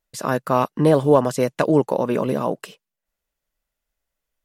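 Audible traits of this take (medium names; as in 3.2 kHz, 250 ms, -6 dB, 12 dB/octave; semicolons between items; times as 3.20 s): noise floor -84 dBFS; spectral tilt -5.0 dB/octave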